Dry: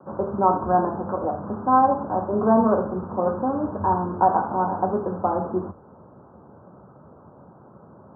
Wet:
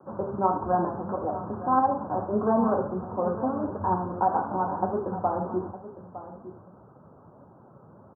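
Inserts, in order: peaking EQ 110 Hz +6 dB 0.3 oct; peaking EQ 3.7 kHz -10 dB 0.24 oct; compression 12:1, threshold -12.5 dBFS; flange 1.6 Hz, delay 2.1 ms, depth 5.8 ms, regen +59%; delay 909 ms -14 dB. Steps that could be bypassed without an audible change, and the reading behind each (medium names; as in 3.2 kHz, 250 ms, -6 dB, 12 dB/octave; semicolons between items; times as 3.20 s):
peaking EQ 3.7 kHz: input has nothing above 1.6 kHz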